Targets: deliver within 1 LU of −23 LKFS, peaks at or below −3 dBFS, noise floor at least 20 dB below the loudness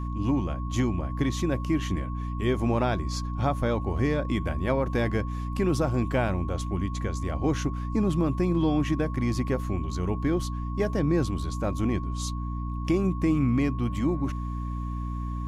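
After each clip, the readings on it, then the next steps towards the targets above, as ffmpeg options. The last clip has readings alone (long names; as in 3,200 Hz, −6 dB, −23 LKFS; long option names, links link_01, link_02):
mains hum 60 Hz; hum harmonics up to 300 Hz; level of the hum −29 dBFS; interfering tone 1,100 Hz; level of the tone −40 dBFS; integrated loudness −27.5 LKFS; sample peak −12.5 dBFS; target loudness −23.0 LKFS
→ -af "bandreject=frequency=60:width_type=h:width=4,bandreject=frequency=120:width_type=h:width=4,bandreject=frequency=180:width_type=h:width=4,bandreject=frequency=240:width_type=h:width=4,bandreject=frequency=300:width_type=h:width=4"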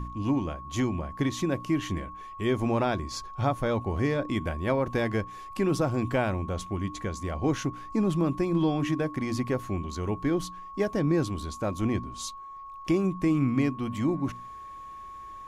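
mains hum none found; interfering tone 1,100 Hz; level of the tone −40 dBFS
→ -af "bandreject=frequency=1100:width=30"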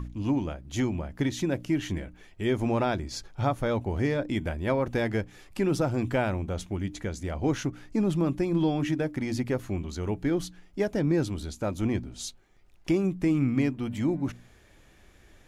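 interfering tone none found; integrated loudness −29.0 LKFS; sample peak −13.5 dBFS; target loudness −23.0 LKFS
→ -af "volume=6dB"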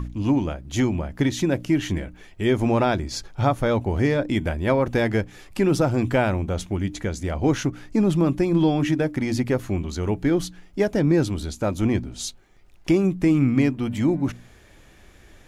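integrated loudness −23.0 LKFS; sample peak −7.5 dBFS; background noise floor −51 dBFS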